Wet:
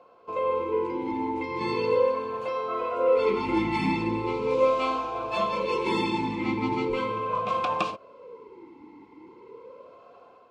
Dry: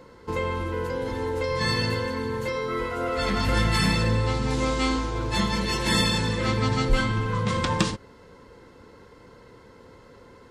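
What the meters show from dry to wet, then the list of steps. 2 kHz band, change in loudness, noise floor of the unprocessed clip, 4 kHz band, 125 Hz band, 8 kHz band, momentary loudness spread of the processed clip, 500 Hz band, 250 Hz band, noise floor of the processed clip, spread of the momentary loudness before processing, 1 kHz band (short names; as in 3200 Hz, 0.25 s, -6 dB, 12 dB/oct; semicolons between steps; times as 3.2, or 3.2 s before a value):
-6.5 dB, -1.5 dB, -51 dBFS, -10.5 dB, -13.0 dB, under -15 dB, 7 LU, +3.5 dB, -2.0 dB, -53 dBFS, 7 LU, +2.0 dB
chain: AGC gain up to 5 dB; vowel sweep a-u 0.39 Hz; gain +7 dB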